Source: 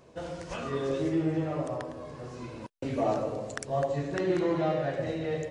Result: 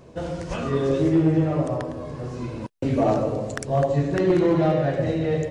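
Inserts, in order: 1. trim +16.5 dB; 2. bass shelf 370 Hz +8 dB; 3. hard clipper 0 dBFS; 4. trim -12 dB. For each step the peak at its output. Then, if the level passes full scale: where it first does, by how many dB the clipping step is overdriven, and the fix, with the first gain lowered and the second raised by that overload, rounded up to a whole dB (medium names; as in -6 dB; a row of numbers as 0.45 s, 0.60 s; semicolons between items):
+1.0 dBFS, +5.0 dBFS, 0.0 dBFS, -12.0 dBFS; step 1, 5.0 dB; step 1 +11.5 dB, step 4 -7 dB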